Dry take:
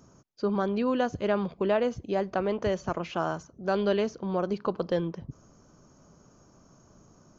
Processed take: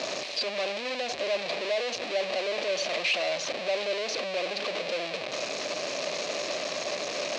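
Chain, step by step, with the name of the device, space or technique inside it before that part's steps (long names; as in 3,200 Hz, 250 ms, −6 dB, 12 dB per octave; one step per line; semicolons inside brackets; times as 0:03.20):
home computer beeper (sign of each sample alone; loudspeaker in its box 560–5,500 Hz, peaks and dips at 590 Hz +10 dB, 900 Hz −8 dB, 1,400 Hz −10 dB, 2,500 Hz +8 dB, 4,100 Hz +7 dB)
level +1.5 dB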